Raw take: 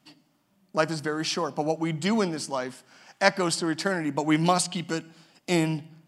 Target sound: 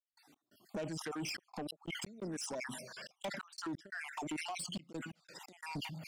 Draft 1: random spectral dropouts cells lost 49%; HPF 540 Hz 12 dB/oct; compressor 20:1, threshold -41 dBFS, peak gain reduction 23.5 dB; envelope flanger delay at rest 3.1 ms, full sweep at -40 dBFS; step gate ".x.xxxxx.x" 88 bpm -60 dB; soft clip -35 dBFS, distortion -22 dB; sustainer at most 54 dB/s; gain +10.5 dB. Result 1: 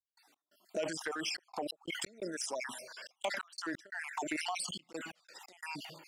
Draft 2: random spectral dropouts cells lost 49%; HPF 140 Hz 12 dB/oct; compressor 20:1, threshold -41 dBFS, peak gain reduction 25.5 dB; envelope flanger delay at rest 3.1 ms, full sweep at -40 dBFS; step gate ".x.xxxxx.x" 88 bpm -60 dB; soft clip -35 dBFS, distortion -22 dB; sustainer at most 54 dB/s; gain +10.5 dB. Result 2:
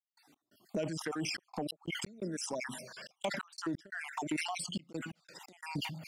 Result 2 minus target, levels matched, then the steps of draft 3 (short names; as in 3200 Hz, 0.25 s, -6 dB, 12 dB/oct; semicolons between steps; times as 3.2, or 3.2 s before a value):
soft clip: distortion -12 dB
random spectral dropouts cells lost 49%; HPF 140 Hz 12 dB/oct; compressor 20:1, threshold -41 dBFS, peak gain reduction 25.5 dB; envelope flanger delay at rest 3.1 ms, full sweep at -40 dBFS; step gate ".x.xxxxx.x" 88 bpm -60 dB; soft clip -46 dBFS, distortion -9 dB; sustainer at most 54 dB/s; gain +10.5 dB